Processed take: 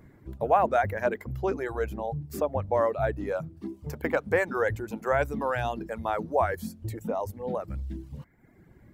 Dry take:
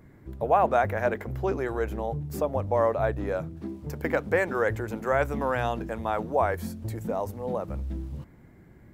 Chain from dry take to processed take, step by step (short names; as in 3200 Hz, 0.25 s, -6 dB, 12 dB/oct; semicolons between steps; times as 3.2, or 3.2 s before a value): reverb removal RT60 0.93 s